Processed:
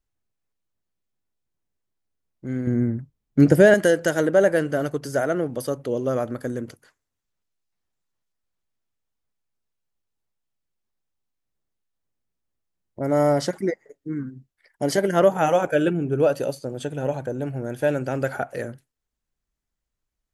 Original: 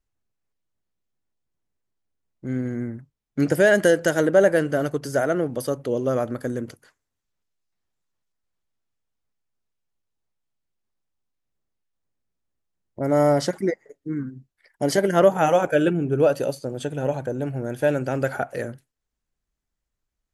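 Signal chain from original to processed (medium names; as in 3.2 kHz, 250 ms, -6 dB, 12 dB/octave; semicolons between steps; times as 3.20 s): 2.67–3.74 s: bass shelf 480 Hz +10 dB; trim -1 dB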